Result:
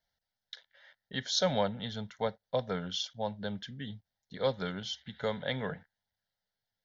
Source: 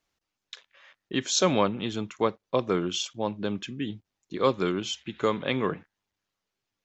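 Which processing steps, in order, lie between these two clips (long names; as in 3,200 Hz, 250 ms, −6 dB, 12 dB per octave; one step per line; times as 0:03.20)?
phaser with its sweep stopped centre 1,700 Hz, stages 8
level −2 dB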